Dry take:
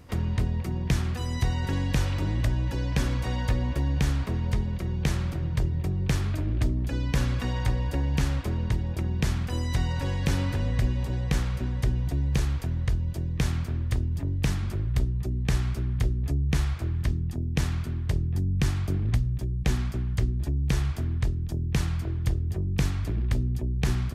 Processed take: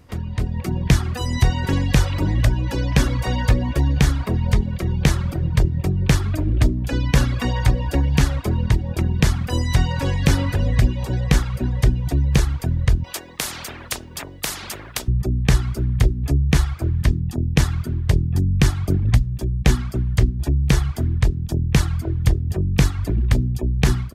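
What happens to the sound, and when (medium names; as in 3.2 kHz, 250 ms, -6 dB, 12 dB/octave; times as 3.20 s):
13.04–15.08 s: spectrum-flattening compressor 4:1
whole clip: reverb removal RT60 0.97 s; level rider gain up to 10.5 dB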